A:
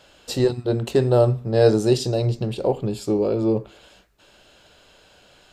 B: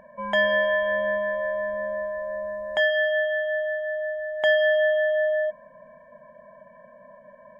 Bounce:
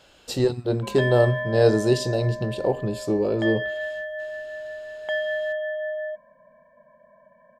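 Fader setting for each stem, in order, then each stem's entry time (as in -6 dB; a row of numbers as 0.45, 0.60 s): -2.0, -6.5 dB; 0.00, 0.65 s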